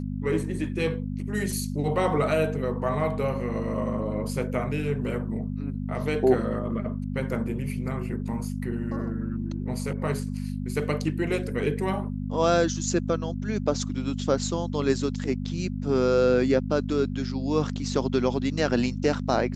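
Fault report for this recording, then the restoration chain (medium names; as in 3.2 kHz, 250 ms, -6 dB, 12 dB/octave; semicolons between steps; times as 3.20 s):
hum 50 Hz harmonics 5 -31 dBFS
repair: de-hum 50 Hz, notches 5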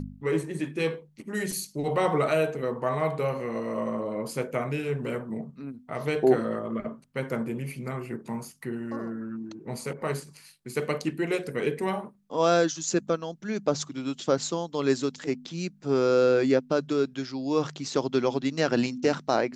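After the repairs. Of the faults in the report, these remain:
nothing left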